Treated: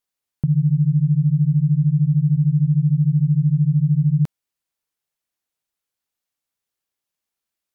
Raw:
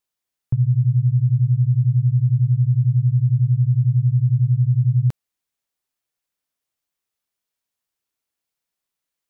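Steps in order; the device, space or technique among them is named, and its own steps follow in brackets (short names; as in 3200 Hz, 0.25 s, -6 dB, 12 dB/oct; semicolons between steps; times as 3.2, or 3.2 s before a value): nightcore (varispeed +20%)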